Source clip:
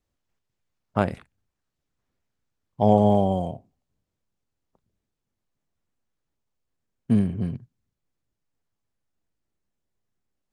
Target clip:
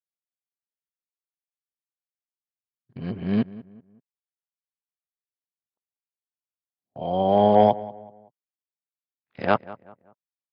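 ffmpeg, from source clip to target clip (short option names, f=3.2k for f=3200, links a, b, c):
-filter_complex "[0:a]areverse,agate=range=-31dB:threshold=-45dB:ratio=16:detection=peak,highpass=110,lowshelf=f=330:g=-12,acontrast=70,asplit=2[a][b];[b]adelay=190,lowpass=f=1.8k:p=1,volume=-18dB,asplit=2[c][d];[d]adelay=190,lowpass=f=1.8k:p=1,volume=0.38,asplit=2[e][f];[f]adelay=190,lowpass=f=1.8k:p=1,volume=0.38[g];[c][e][g]amix=inputs=3:normalize=0[h];[a][h]amix=inputs=2:normalize=0,aresample=11025,aresample=44100"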